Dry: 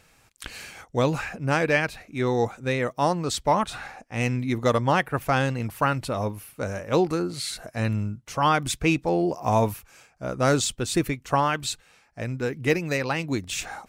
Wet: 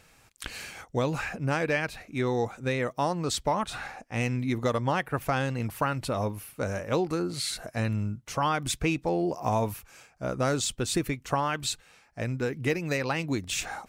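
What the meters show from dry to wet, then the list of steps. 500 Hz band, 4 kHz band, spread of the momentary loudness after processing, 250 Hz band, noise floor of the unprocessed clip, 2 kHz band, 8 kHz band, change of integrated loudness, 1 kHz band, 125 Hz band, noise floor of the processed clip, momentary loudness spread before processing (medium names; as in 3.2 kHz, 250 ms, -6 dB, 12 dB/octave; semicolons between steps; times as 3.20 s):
-4.5 dB, -2.5 dB, 7 LU, -4.0 dB, -60 dBFS, -4.0 dB, -2.0 dB, -4.0 dB, -5.0 dB, -3.5 dB, -60 dBFS, 11 LU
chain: compression 2.5:1, threshold -25 dBFS, peak gain reduction 7 dB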